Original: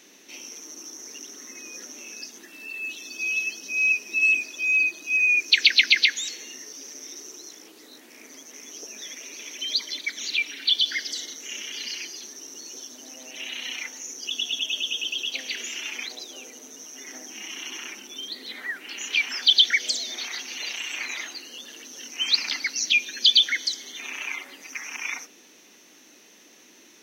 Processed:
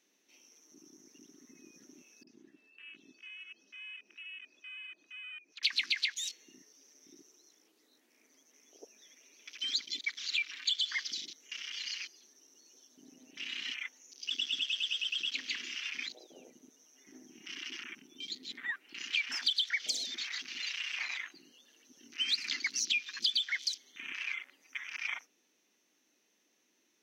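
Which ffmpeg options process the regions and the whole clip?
ffmpeg -i in.wav -filter_complex "[0:a]asettb=1/sr,asplit=3[link_01][link_02][link_03];[link_01]atrim=end=2.234[link_04];[link_02]atrim=start=2.23:end=5.63,asetpts=PTS-STARTPTS,afade=type=in:duration=0.004:curve=qsin,afade=type=out:start_time=3.396:duration=0.004:curve=qsin,aemphasis=mode=reproduction:type=75fm,acompressor=threshold=-39dB:ratio=6:attack=3.2:release=140:knee=1:detection=peak,acrossover=split=980[link_05][link_06];[link_06]adelay=40[link_07];[link_05][link_07]amix=inputs=2:normalize=0,atrim=end_sample=149940[link_08];[link_03]atrim=start=5.626[link_09];[link_04][link_08]acrossfade=duration=0.004:curve1=hsin:curve2=qsin[link_10];[link_10][link_09]acrossfade=duration=0.004:curve1=qsin:curve2=hsin,afwtdn=0.0141,acompressor=threshold=-23dB:ratio=6,volume=-5dB" out.wav

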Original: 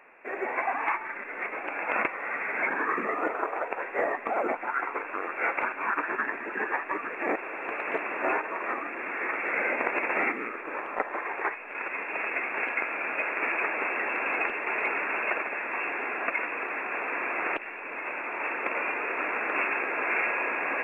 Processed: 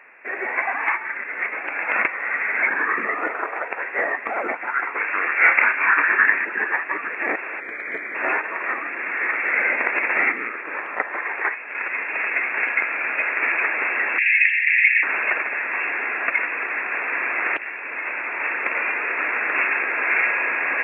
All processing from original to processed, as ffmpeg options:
ffmpeg -i in.wav -filter_complex "[0:a]asettb=1/sr,asplit=3[link_01][link_02][link_03];[link_01]atrim=end=4.984[link_04];[link_02]atrim=start=4.98:end=6.45,asetpts=PTS-STARTPTS,afade=type=in:duration=0.004:curve=qsin,afade=type=out:start_time=1.466:duration=0.004:curve=qsin,acrossover=split=3100[link_05][link_06];[link_06]acompressor=threshold=-60dB:ratio=4:attack=1:release=60[link_07];[link_05][link_07]amix=inputs=2:normalize=0,equalizer=frequency=2400:width_type=o:width=1.5:gain=8.5,asplit=2[link_08][link_09];[link_09]adelay=28,volume=-7dB[link_10];[link_08][link_10]amix=inputs=2:normalize=0,atrim=end_sample=64827[link_11];[link_03]atrim=start=6.446[link_12];[link_04][link_11]acrossfade=duration=0.004:curve1=hsin:curve2=qsin[link_13];[link_13][link_12]acrossfade=duration=0.004:curve1=qsin:curve2=hsin,asettb=1/sr,asplit=3[link_14][link_15][link_16];[link_14]atrim=end=7.604[link_17];[link_15]atrim=start=7.6:end=8.15,asetpts=PTS-STARTPTS,afade=type=in:duration=0.004:curve=qsin,afade=type=out:start_time=0.546:duration=0.004:curve=qsin,asuperstop=centerf=2700:order=12:qfactor=5.4,equalizer=frequency=930:width=1.1:gain=-13[link_18];[link_16]atrim=start=8.146[link_19];[link_17][link_18]acrossfade=duration=0.004:curve1=hsin:curve2=qsin[link_20];[link_20][link_19]acrossfade=duration=0.004:curve1=qsin:curve2=hsin,asettb=1/sr,asplit=3[link_21][link_22][link_23];[link_21]atrim=end=14.184[link_24];[link_22]atrim=start=14.18:end=15.03,asetpts=PTS-STARTPTS,afade=type=in:duration=0.004:curve=qsin,afade=type=out:start_time=0.846:duration=0.004:curve=qsin,acontrast=68,asuperpass=centerf=2500:order=12:qfactor=1.4[link_25];[link_23]atrim=start=15.026[link_26];[link_24][link_25]acrossfade=duration=0.004:curve1=hsin:curve2=qsin[link_27];[link_27][link_26]acrossfade=duration=0.004:curve1=qsin:curve2=hsin,highpass=47,equalizer=frequency=1900:width=1.4:gain=10.5" out.wav

